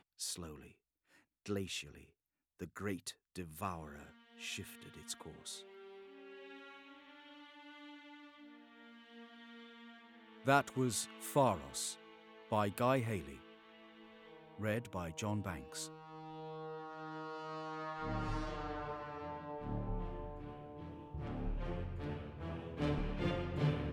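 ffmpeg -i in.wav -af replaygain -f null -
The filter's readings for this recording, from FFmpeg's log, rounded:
track_gain = +21.7 dB
track_peak = 0.113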